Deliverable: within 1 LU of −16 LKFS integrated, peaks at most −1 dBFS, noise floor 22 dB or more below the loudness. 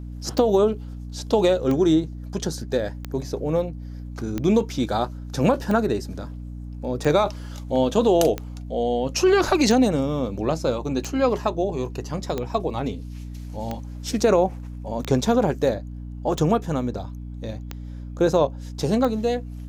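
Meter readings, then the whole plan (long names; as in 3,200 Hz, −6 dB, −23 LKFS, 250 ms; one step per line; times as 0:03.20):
number of clicks 15; mains hum 60 Hz; hum harmonics up to 300 Hz; level of the hum −32 dBFS; integrated loudness −23.0 LKFS; sample peak −6.0 dBFS; target loudness −16.0 LKFS
→ click removal
hum removal 60 Hz, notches 5
level +7 dB
brickwall limiter −1 dBFS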